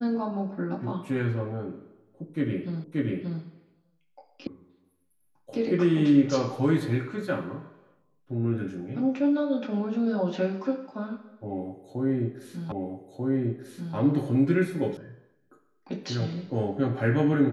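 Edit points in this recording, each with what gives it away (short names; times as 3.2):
2.84 repeat of the last 0.58 s
4.47 sound cut off
12.72 repeat of the last 1.24 s
14.97 sound cut off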